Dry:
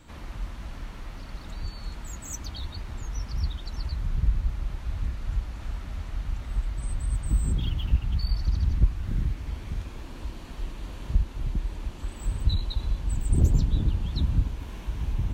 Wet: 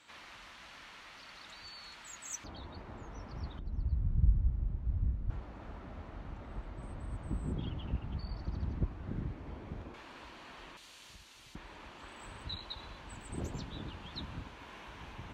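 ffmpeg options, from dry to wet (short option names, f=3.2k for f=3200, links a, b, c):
-af "asetnsamples=n=441:p=0,asendcmd='2.44 bandpass f 530;3.59 bandpass f 110;5.3 bandpass f 490;9.94 bandpass f 1600;10.77 bandpass f 5800;11.55 bandpass f 1500',bandpass=f=2.9k:t=q:w=0.62:csg=0"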